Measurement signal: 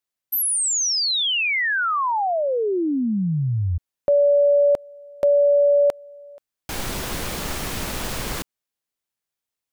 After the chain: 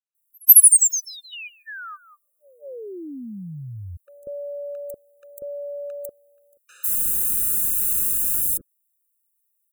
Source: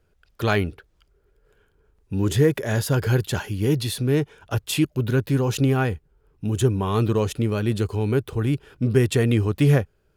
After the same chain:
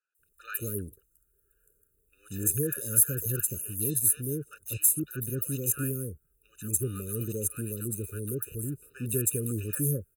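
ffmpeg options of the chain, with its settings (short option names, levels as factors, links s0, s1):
-filter_complex "[0:a]acrossover=split=850|4400[s0][s1][s2];[s2]adelay=150[s3];[s0]adelay=190[s4];[s4][s1][s3]amix=inputs=3:normalize=0,aexciter=amount=15.1:drive=9.3:freq=7400,afftfilt=real='re*eq(mod(floor(b*sr/1024/600),2),0)':imag='im*eq(mod(floor(b*sr/1024/600),2),0)':win_size=1024:overlap=0.75,volume=0.237"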